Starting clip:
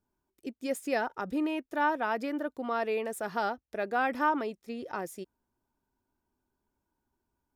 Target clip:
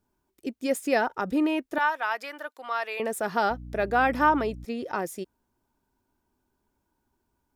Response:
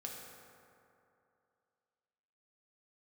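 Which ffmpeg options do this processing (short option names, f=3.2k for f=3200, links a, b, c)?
-filter_complex "[0:a]asettb=1/sr,asplit=3[a][b][c];[a]atrim=end=1.784[d];[b]atrim=start=1.78:end=3,asetpts=PTS-STARTPTS,afade=t=in:d=0.004:c=qsin,afade=t=out:st=1.216:d=0.004:c=qsin,highpass=1k[e];[c]atrim=start=2.996[f];[d][e]acrossfade=d=0.004:c1=hsin:c2=qsin[g];[g][f]acrossfade=d=0.004:c1=qsin:c2=hsin,asettb=1/sr,asplit=3[h][i][j];[h]atrim=end=3.504[k];[i]atrim=start=3.5:end=4.65,asetpts=PTS-STARTPTS,afade=t=in:d=0.004:c=qsin,afade=t=out:st=1.146:d=0.004:c=qsin,aeval=exprs='val(0)+0.00562*(sin(2*PI*60*n/s)+sin(2*PI*2*60*n/s)/2+sin(2*PI*3*60*n/s)/3+sin(2*PI*4*60*n/s)/4+sin(2*PI*5*60*n/s)/5)':c=same[l];[j]atrim=start=4.646[m];[k][l]acrossfade=d=0.004:c1=hsin:c2=qsin[n];[n][m]acrossfade=d=0.004:c1=qsin:c2=hsin,volume=6dB"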